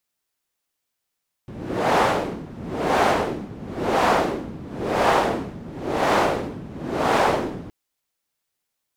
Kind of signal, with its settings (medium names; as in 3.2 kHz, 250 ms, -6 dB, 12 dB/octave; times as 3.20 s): wind-like swept noise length 6.22 s, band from 190 Hz, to 770 Hz, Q 1.2, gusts 6, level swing 18 dB